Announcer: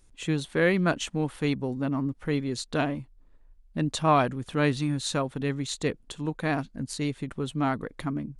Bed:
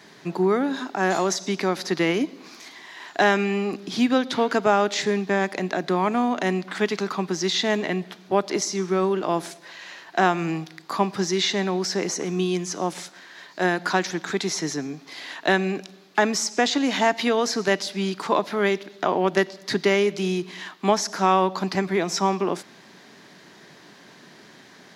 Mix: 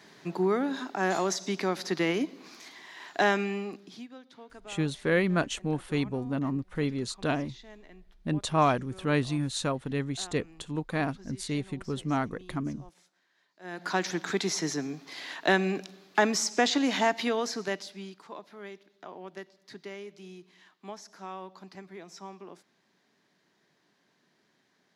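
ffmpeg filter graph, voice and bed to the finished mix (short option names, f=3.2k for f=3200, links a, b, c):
-filter_complex "[0:a]adelay=4500,volume=-2dB[a];[1:a]volume=18.5dB,afade=t=out:st=3.3:d=0.77:silence=0.0794328,afade=t=in:st=13.63:d=0.47:silence=0.0630957,afade=t=out:st=16.79:d=1.43:silence=0.11885[b];[a][b]amix=inputs=2:normalize=0"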